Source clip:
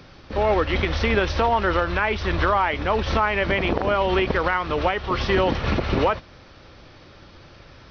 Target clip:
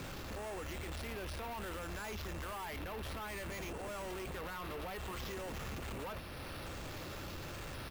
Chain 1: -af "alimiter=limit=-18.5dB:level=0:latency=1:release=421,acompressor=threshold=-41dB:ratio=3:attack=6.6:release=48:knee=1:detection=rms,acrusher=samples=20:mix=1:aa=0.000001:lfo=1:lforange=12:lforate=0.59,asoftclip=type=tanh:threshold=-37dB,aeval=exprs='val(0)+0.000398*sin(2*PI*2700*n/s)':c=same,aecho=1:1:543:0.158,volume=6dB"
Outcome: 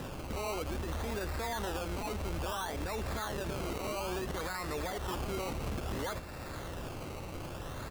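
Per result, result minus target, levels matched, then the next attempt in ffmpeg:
decimation with a swept rate: distortion +13 dB; soft clip: distortion -8 dB
-af "alimiter=limit=-18.5dB:level=0:latency=1:release=421,acompressor=threshold=-41dB:ratio=3:attack=6.6:release=48:knee=1:detection=rms,acrusher=samples=4:mix=1:aa=0.000001:lfo=1:lforange=2.4:lforate=0.59,asoftclip=type=tanh:threshold=-37dB,aeval=exprs='val(0)+0.000398*sin(2*PI*2700*n/s)':c=same,aecho=1:1:543:0.158,volume=6dB"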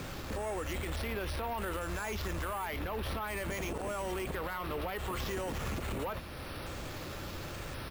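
soft clip: distortion -8 dB
-af "alimiter=limit=-18.5dB:level=0:latency=1:release=421,acompressor=threshold=-41dB:ratio=3:attack=6.6:release=48:knee=1:detection=rms,acrusher=samples=4:mix=1:aa=0.000001:lfo=1:lforange=2.4:lforate=0.59,asoftclip=type=tanh:threshold=-47dB,aeval=exprs='val(0)+0.000398*sin(2*PI*2700*n/s)':c=same,aecho=1:1:543:0.158,volume=6dB"

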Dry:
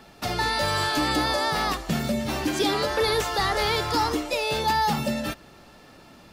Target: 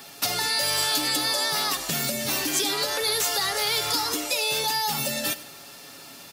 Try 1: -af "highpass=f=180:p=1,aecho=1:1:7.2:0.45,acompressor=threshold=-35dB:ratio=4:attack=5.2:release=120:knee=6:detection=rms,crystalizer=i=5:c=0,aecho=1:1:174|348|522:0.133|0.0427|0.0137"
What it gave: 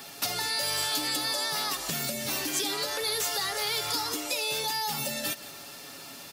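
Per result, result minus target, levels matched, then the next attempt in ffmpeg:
echo 76 ms late; compressor: peak gain reduction +5 dB
-af "highpass=f=180:p=1,aecho=1:1:7.2:0.45,acompressor=threshold=-35dB:ratio=4:attack=5.2:release=120:knee=6:detection=rms,crystalizer=i=5:c=0,aecho=1:1:98|196|294:0.133|0.0427|0.0137"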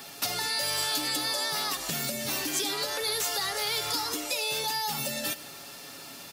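compressor: peak gain reduction +5 dB
-af "highpass=f=180:p=1,aecho=1:1:7.2:0.45,acompressor=threshold=-28.5dB:ratio=4:attack=5.2:release=120:knee=6:detection=rms,crystalizer=i=5:c=0,aecho=1:1:98|196|294:0.133|0.0427|0.0137"

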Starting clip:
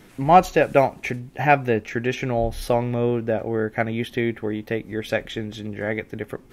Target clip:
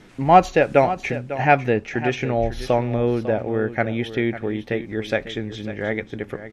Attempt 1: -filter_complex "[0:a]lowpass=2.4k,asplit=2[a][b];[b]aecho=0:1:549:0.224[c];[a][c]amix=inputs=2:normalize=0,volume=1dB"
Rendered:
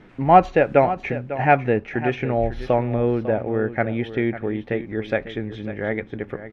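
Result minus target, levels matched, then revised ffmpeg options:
8000 Hz band -15.5 dB
-filter_complex "[0:a]lowpass=6.9k,asplit=2[a][b];[b]aecho=0:1:549:0.224[c];[a][c]amix=inputs=2:normalize=0,volume=1dB"

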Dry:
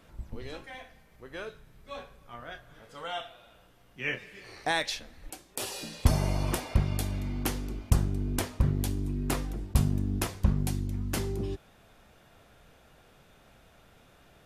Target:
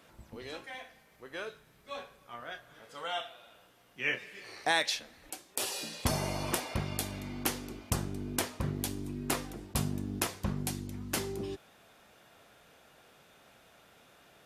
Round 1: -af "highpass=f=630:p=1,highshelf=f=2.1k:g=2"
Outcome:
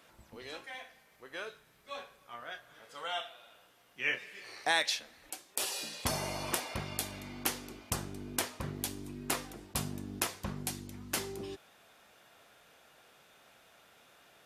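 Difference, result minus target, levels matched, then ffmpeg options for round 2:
250 Hz band -3.5 dB
-af "highpass=f=280:p=1,highshelf=f=2.1k:g=2"

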